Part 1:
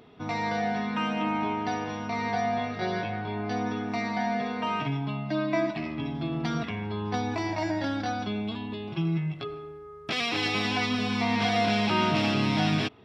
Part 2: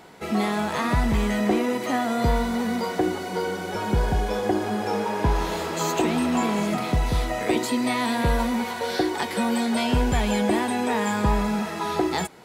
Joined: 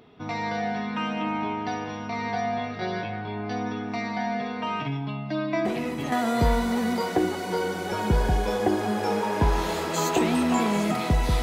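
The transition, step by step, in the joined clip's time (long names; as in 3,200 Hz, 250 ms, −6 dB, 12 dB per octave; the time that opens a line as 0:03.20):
part 1
0:05.65: mix in part 2 from 0:01.48 0.47 s −7.5 dB
0:06.12: continue with part 2 from 0:01.95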